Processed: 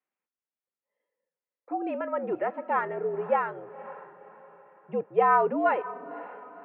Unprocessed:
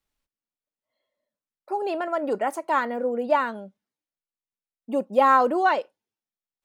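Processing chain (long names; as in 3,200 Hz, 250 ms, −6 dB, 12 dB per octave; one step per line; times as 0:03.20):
feedback delay with all-pass diffusion 530 ms, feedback 41%, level −16 dB
single-sideband voice off tune −70 Hz 310–2,600 Hz
level −3.5 dB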